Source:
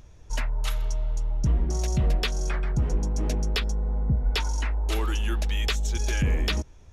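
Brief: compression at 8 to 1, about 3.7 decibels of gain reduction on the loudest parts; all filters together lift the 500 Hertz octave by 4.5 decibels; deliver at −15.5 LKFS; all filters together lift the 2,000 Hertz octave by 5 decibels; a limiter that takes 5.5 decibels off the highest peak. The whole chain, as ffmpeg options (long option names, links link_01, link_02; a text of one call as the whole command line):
ffmpeg -i in.wav -af "equalizer=frequency=500:width_type=o:gain=5.5,equalizer=frequency=2000:width_type=o:gain=6,acompressor=threshold=-22dB:ratio=8,volume=15dB,alimiter=limit=-5.5dB:level=0:latency=1" out.wav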